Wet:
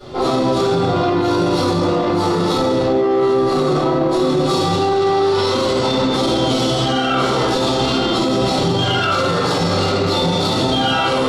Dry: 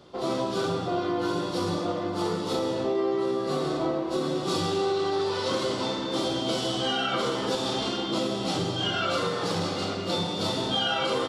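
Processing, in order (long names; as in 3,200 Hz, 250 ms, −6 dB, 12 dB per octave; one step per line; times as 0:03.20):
convolution reverb RT60 0.55 s, pre-delay 4 ms, DRR −10.5 dB
in parallel at −4 dB: soft clipping −15 dBFS, distortion −9 dB
on the sum: brickwall limiter −8 dBFS, peak gain reduction 9.5 dB
level −1.5 dB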